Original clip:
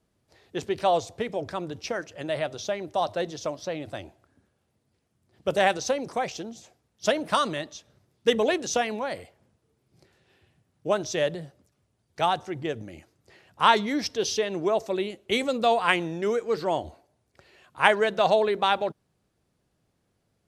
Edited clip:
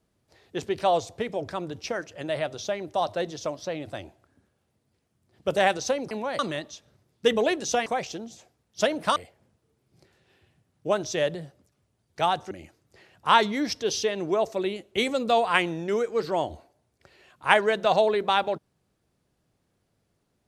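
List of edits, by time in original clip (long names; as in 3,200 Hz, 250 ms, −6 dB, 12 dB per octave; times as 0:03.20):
0:06.11–0:07.41: swap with 0:08.88–0:09.16
0:12.51–0:12.85: remove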